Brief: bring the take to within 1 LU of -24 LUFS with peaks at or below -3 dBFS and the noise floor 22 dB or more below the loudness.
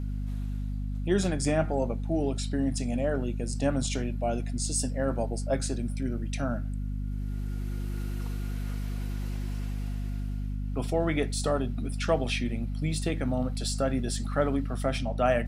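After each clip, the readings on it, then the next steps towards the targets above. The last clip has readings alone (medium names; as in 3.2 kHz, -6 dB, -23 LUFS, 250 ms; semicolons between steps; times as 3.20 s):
hum 50 Hz; highest harmonic 250 Hz; hum level -29 dBFS; loudness -30.5 LUFS; peak level -11.5 dBFS; loudness target -24.0 LUFS
-> de-hum 50 Hz, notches 5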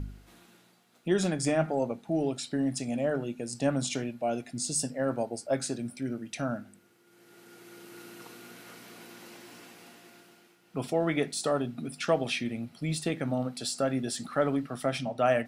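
hum not found; loudness -31.0 LUFS; peak level -13.0 dBFS; loudness target -24.0 LUFS
-> trim +7 dB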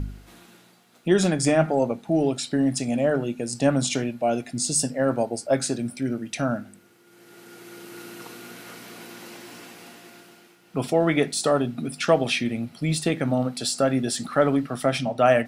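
loudness -24.0 LUFS; peak level -6.0 dBFS; noise floor -56 dBFS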